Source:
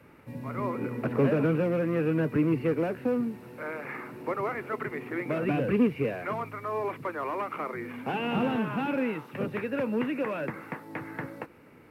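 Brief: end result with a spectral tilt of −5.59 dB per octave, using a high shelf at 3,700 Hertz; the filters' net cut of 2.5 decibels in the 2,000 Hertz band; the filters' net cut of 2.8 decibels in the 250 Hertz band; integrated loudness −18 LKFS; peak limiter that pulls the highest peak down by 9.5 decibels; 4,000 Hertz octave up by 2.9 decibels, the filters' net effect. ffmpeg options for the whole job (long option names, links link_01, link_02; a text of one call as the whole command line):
ffmpeg -i in.wav -af "equalizer=frequency=250:width_type=o:gain=-3.5,equalizer=frequency=2000:width_type=o:gain=-6.5,highshelf=frequency=3700:gain=4.5,equalizer=frequency=4000:width_type=o:gain=6.5,volume=17dB,alimiter=limit=-8dB:level=0:latency=1" out.wav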